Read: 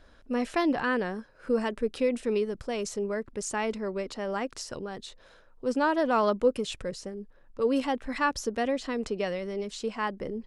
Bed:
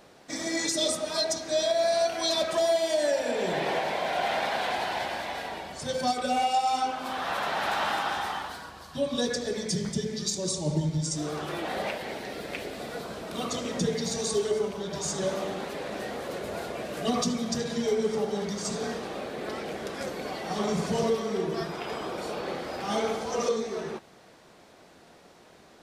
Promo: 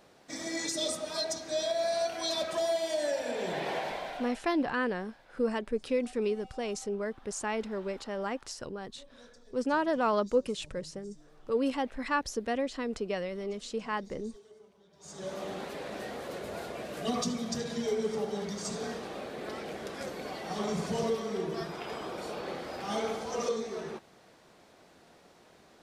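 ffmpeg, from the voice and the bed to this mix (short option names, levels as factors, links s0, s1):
-filter_complex "[0:a]adelay=3900,volume=0.708[s0];[1:a]volume=8.41,afade=t=out:st=3.85:d=0.54:silence=0.0707946,afade=t=in:st=14.98:d=0.57:silence=0.0630957[s1];[s0][s1]amix=inputs=2:normalize=0"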